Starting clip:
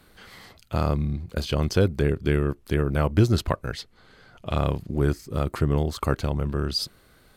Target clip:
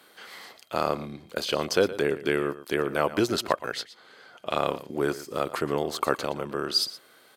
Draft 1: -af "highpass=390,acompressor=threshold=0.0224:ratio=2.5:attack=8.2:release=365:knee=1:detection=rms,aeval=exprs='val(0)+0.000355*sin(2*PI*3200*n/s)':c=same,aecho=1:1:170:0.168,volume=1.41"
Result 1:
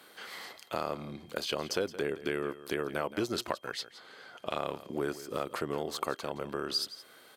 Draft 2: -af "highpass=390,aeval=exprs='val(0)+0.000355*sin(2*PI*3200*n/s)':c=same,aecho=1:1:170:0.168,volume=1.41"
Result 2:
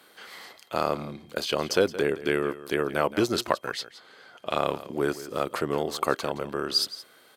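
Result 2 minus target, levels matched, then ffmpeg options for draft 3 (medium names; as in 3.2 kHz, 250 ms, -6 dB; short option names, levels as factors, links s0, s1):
echo 52 ms late
-af "highpass=390,aeval=exprs='val(0)+0.000355*sin(2*PI*3200*n/s)':c=same,aecho=1:1:118:0.168,volume=1.41"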